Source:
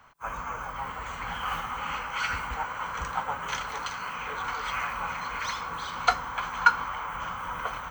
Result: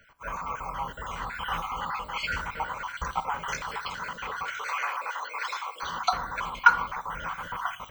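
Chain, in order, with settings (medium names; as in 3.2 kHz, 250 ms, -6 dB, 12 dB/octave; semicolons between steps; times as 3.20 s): random holes in the spectrogram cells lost 41%; 4.43–5.83 s: high-pass 410 Hz 24 dB/octave; reverberation RT60 0.55 s, pre-delay 5 ms, DRR 11.5 dB; trim +1.5 dB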